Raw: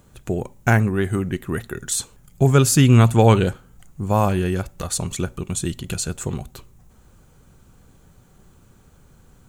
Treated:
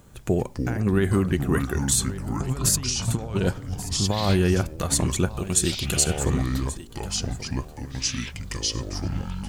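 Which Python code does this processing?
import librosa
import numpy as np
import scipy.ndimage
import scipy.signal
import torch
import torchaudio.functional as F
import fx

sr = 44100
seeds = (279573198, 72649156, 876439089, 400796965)

p1 = fx.over_compress(x, sr, threshold_db=-20.0, ratio=-0.5)
p2 = fx.bass_treble(p1, sr, bass_db=-5, treble_db=5, at=(5.38, 6.04))
p3 = p2 + fx.echo_single(p2, sr, ms=1133, db=-16.0, dry=0)
p4 = fx.echo_pitch(p3, sr, ms=170, semitones=-6, count=3, db_per_echo=-6.0)
y = p4 * 10.0 ** (-2.0 / 20.0)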